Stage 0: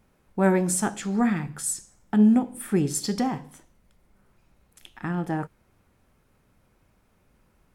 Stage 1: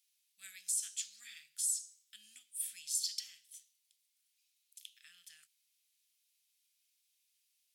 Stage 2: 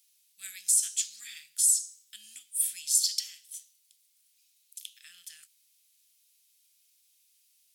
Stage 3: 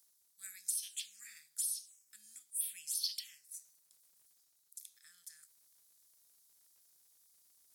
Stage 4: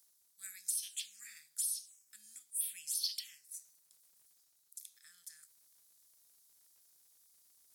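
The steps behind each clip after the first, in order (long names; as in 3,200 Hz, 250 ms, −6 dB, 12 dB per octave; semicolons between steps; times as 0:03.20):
inverse Chebyshev high-pass filter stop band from 980 Hz, stop band 60 dB; brickwall limiter −24 dBFS, peak gain reduction 10 dB
high-shelf EQ 4,200 Hz +8 dB; level +4.5 dB
phaser swept by the level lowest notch 450 Hz, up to 1,400 Hz, full sweep at −23.5 dBFS; surface crackle 170 per second −64 dBFS; reversed playback; upward compression, threshold −57 dBFS; reversed playback; level −4.5 dB
soft clipping −22 dBFS, distortion −26 dB; level +1 dB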